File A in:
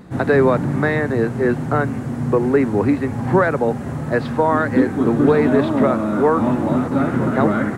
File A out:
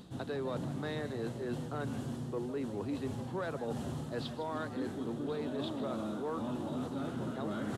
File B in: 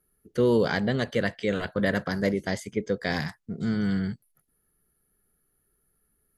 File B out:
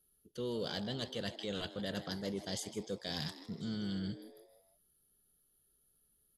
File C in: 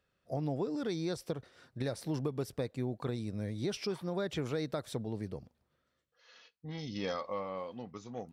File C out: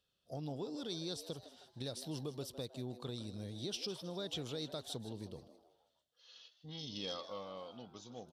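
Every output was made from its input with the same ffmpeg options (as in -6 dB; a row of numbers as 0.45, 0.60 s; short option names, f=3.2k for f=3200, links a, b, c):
-filter_complex "[0:a]highshelf=f=2.6k:t=q:w=3:g=7,areverse,acompressor=threshold=-27dB:ratio=6,areverse,asoftclip=type=tanh:threshold=-18.5dB,asplit=5[a][b][c][d][e];[b]adelay=157,afreqshift=120,volume=-14dB[f];[c]adelay=314,afreqshift=240,volume=-21.3dB[g];[d]adelay=471,afreqshift=360,volume=-28.7dB[h];[e]adelay=628,afreqshift=480,volume=-36dB[i];[a][f][g][h][i]amix=inputs=5:normalize=0,aresample=32000,aresample=44100,volume=-7.5dB"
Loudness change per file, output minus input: -20.0, -12.5, -6.0 LU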